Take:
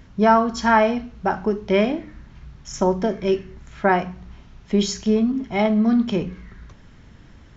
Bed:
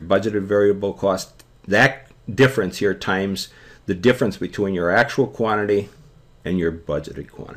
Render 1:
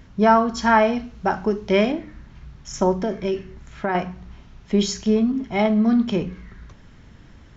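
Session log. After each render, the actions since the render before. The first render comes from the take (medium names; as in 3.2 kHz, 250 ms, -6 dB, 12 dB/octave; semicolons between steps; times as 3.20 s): 0.93–1.92 s: treble shelf 4.9 kHz +7 dB; 2.93–3.95 s: compression, threshold -18 dBFS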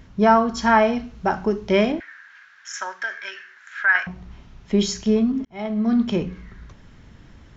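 2.00–4.07 s: resonant high-pass 1.6 kHz, resonance Q 8.2; 5.45–6.01 s: fade in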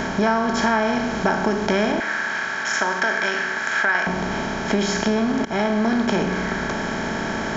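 spectral levelling over time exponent 0.4; compression 3:1, threshold -18 dBFS, peak gain reduction 9 dB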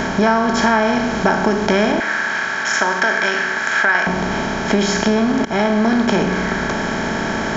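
trim +4.5 dB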